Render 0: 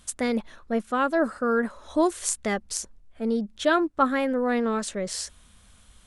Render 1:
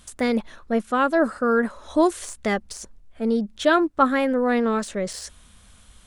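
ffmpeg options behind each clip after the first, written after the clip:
-af "deesser=0.7,volume=1.5"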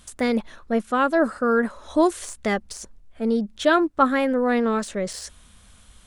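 -af anull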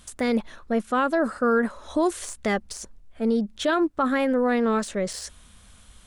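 -af "alimiter=limit=0.2:level=0:latency=1:release=42"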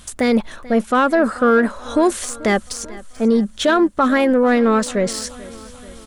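-filter_complex "[0:a]asplit=2[s0][s1];[s1]asoftclip=type=tanh:threshold=0.0794,volume=0.501[s2];[s0][s2]amix=inputs=2:normalize=0,aecho=1:1:437|874|1311|1748|2185:0.1|0.058|0.0336|0.0195|0.0113,volume=1.78"

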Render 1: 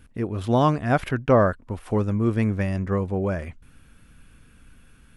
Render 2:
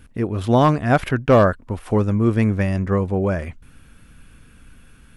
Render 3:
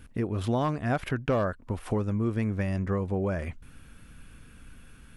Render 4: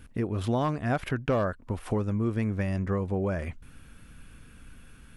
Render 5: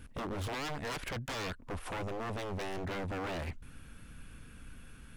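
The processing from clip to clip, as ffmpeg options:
-af "volume=3.55,asoftclip=hard,volume=0.282,volume=1.68"
-af "acompressor=threshold=0.0631:ratio=3,volume=0.75"
-af anull
-af "aeval=exprs='0.0266*(abs(mod(val(0)/0.0266+3,4)-2)-1)':c=same,volume=0.891"

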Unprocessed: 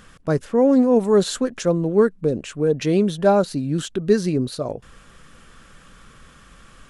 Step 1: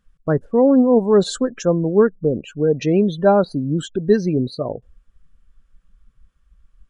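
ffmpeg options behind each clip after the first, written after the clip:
-af "afftdn=nr=29:nf=-32,volume=1.26"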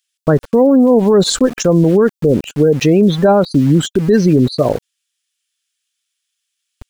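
-filter_complex "[0:a]acrossover=split=2800[s0][s1];[s0]aeval=exprs='val(0)*gte(abs(val(0)),0.0133)':c=same[s2];[s2][s1]amix=inputs=2:normalize=0,alimiter=level_in=4.73:limit=0.891:release=50:level=0:latency=1,volume=0.794"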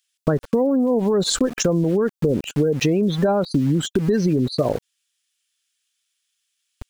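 -af "acompressor=threshold=0.158:ratio=6"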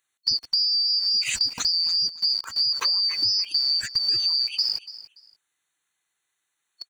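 -af "afftfilt=real='real(if(lt(b,272),68*(eq(floor(b/68),0)*1+eq(floor(b/68),1)*2+eq(floor(b/68),2)*3+eq(floor(b/68),3)*0)+mod(b,68),b),0)':imag='imag(if(lt(b,272),68*(eq(floor(b/68),0)*1+eq(floor(b/68),1)*2+eq(floor(b/68),2)*3+eq(floor(b/68),3)*0)+mod(b,68),b),0)':win_size=2048:overlap=0.75,lowshelf=f=480:g=-4,aecho=1:1:288|576:0.158|0.0349,volume=0.596"

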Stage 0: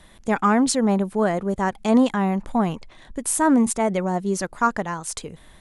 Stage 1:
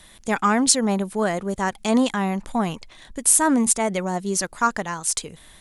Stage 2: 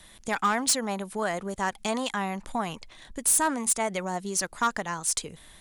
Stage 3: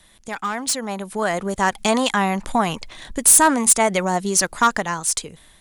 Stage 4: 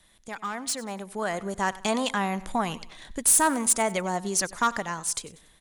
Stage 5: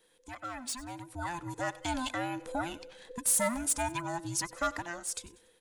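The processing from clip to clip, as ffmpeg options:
-af "highshelf=f=2200:g=11,volume=0.75"
-filter_complex "[0:a]acrossover=split=600[s0][s1];[s0]acompressor=threshold=0.0355:ratio=6[s2];[s1]volume=5.62,asoftclip=hard,volume=0.178[s3];[s2][s3]amix=inputs=2:normalize=0,volume=0.708"
-af "dynaudnorm=f=480:g=5:m=4.47,volume=0.841"
-af "aecho=1:1:95|190|285:0.112|0.046|0.0189,volume=0.422"
-af "afftfilt=real='real(if(between(b,1,1008),(2*floor((b-1)/24)+1)*24-b,b),0)':imag='imag(if(between(b,1,1008),(2*floor((b-1)/24)+1)*24-b,b),0)*if(between(b,1,1008),-1,1)':win_size=2048:overlap=0.75,volume=0.422"

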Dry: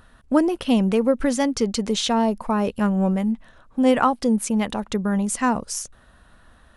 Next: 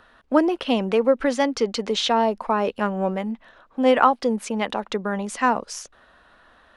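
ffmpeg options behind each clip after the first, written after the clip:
-filter_complex "[0:a]acrossover=split=300 5200:gain=0.178 1 0.158[s0][s1][s2];[s0][s1][s2]amix=inputs=3:normalize=0,volume=1.41"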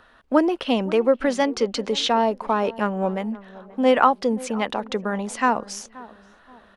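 -filter_complex "[0:a]asplit=2[s0][s1];[s1]adelay=528,lowpass=f=1100:p=1,volume=0.119,asplit=2[s2][s3];[s3]adelay=528,lowpass=f=1100:p=1,volume=0.43,asplit=2[s4][s5];[s5]adelay=528,lowpass=f=1100:p=1,volume=0.43[s6];[s0][s2][s4][s6]amix=inputs=4:normalize=0"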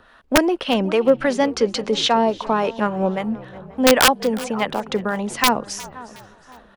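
-filter_complex "[0:a]acrossover=split=590[s0][s1];[s0]aeval=exprs='val(0)*(1-0.5/2+0.5/2*cos(2*PI*3.6*n/s))':c=same[s2];[s1]aeval=exprs='val(0)*(1-0.5/2-0.5/2*cos(2*PI*3.6*n/s))':c=same[s3];[s2][s3]amix=inputs=2:normalize=0,aeval=exprs='(mod(2.82*val(0)+1,2)-1)/2.82':c=same,asplit=4[s4][s5][s6][s7];[s5]adelay=361,afreqshift=-59,volume=0.1[s8];[s6]adelay=722,afreqshift=-118,volume=0.0389[s9];[s7]adelay=1083,afreqshift=-177,volume=0.0151[s10];[s4][s8][s9][s10]amix=inputs=4:normalize=0,volume=1.78"

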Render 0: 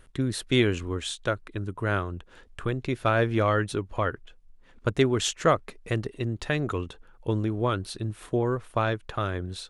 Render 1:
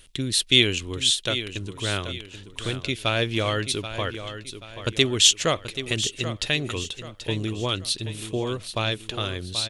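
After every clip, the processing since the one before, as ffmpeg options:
-filter_complex "[0:a]highshelf=f=2100:t=q:w=1.5:g=12.5,asplit=2[s0][s1];[s1]aecho=0:1:782|1564|2346|3128:0.282|0.11|0.0429|0.0167[s2];[s0][s2]amix=inputs=2:normalize=0,volume=0.841"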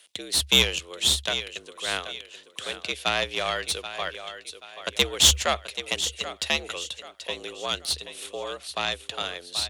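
-af "highpass=500,aeval=exprs='0.841*(cos(1*acos(clip(val(0)/0.841,-1,1)))-cos(1*PI/2))+0.0944*(cos(6*acos(clip(val(0)/0.841,-1,1)))-cos(6*PI/2))':c=same,afreqshift=69,volume=0.891"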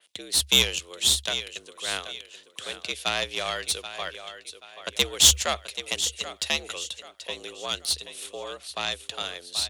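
-af "adynamicequalizer=threshold=0.0158:dfrequency=3700:dqfactor=0.7:tfrequency=3700:tqfactor=0.7:attack=5:release=100:ratio=0.375:range=3:mode=boostabove:tftype=highshelf,volume=0.708"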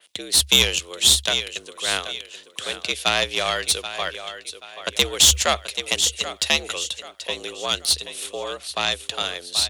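-af "alimiter=level_in=2.37:limit=0.891:release=50:level=0:latency=1,volume=0.891"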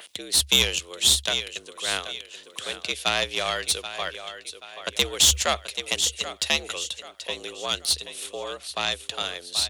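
-af "acompressor=mode=upward:threshold=0.0282:ratio=2.5,volume=0.668"

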